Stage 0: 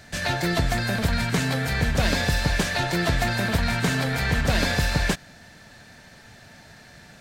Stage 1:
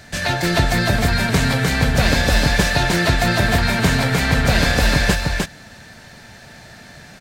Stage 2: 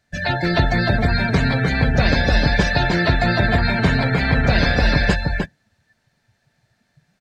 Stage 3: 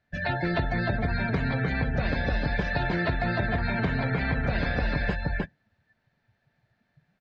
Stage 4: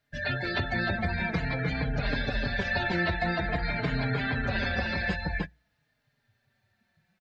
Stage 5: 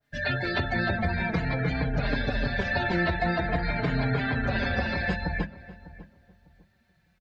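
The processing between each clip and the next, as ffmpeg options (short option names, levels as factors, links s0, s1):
-af "aecho=1:1:304:0.708,volume=1.78"
-af "afftdn=nr=26:nf=-24"
-af "lowpass=3000,acompressor=threshold=0.141:ratio=6,volume=0.531"
-filter_complex "[0:a]highshelf=f=2400:g=9,bandreject=f=60:t=h:w=6,bandreject=f=120:t=h:w=6,asplit=2[s0][s1];[s1]adelay=4.4,afreqshift=-0.5[s2];[s0][s2]amix=inputs=2:normalize=1"
-filter_complex "[0:a]bandreject=f=50:t=h:w=6,bandreject=f=100:t=h:w=6,bandreject=f=150:t=h:w=6,bandreject=f=200:t=h:w=6,asplit=2[s0][s1];[s1]adelay=600,lowpass=f=910:p=1,volume=0.158,asplit=2[s2][s3];[s3]adelay=600,lowpass=f=910:p=1,volume=0.26,asplit=2[s4][s5];[s5]adelay=600,lowpass=f=910:p=1,volume=0.26[s6];[s0][s2][s4][s6]amix=inputs=4:normalize=0,adynamicequalizer=threshold=0.00708:dfrequency=1600:dqfactor=0.7:tfrequency=1600:tqfactor=0.7:attack=5:release=100:ratio=0.375:range=2:mode=cutabove:tftype=highshelf,volume=1.41"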